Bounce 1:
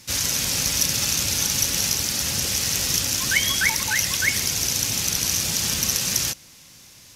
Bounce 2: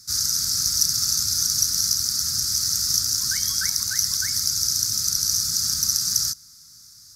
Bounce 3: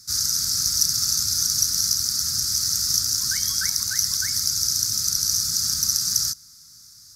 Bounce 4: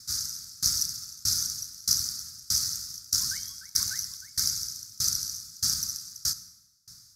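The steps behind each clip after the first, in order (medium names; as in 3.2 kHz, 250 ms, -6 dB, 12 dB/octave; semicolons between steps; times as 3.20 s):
FFT filter 110 Hz 0 dB, 320 Hz -9 dB, 500 Hz -30 dB, 870 Hz -23 dB, 1.3 kHz +4 dB, 2.8 kHz -22 dB, 4.8 kHz +11 dB, 7.1 kHz +5 dB; trim -6 dB
no audible change
reverberation RT60 2.9 s, pre-delay 47 ms, DRR 14 dB; sawtooth tremolo in dB decaying 1.6 Hz, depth 27 dB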